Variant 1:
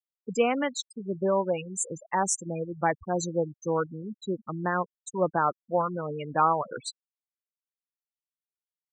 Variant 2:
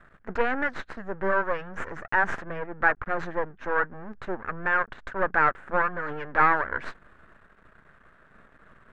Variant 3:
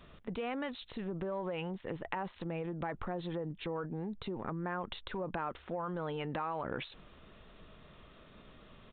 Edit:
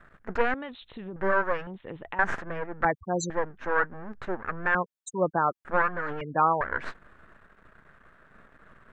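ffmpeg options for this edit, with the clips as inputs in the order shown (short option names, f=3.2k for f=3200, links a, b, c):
-filter_complex "[2:a]asplit=2[a][b];[0:a]asplit=3[c][d][e];[1:a]asplit=6[f][g][h][i][j][k];[f]atrim=end=0.542[l];[a]atrim=start=0.538:end=1.162[m];[g]atrim=start=1.158:end=1.672[n];[b]atrim=start=1.668:end=2.192[o];[h]atrim=start=2.188:end=2.852[p];[c]atrim=start=2.848:end=3.302[q];[i]atrim=start=3.298:end=4.752[r];[d]atrim=start=4.748:end=5.652[s];[j]atrim=start=5.648:end=6.212[t];[e]atrim=start=6.208:end=6.612[u];[k]atrim=start=6.608[v];[l][m]acrossfade=d=0.004:c1=hsin:c2=hsin[w];[w][n]acrossfade=d=0.004:c1=hsin:c2=hsin[x];[x][o]acrossfade=d=0.004:c1=hsin:c2=hsin[y];[y][p]acrossfade=d=0.004:c1=hsin:c2=hsin[z];[z][q]acrossfade=d=0.004:c1=hsin:c2=hsin[aa];[aa][r]acrossfade=d=0.004:c1=hsin:c2=hsin[ab];[ab][s]acrossfade=d=0.004:c1=hsin:c2=hsin[ac];[ac][t]acrossfade=d=0.004:c1=hsin:c2=hsin[ad];[ad][u]acrossfade=d=0.004:c1=hsin:c2=hsin[ae];[ae][v]acrossfade=d=0.004:c1=hsin:c2=hsin"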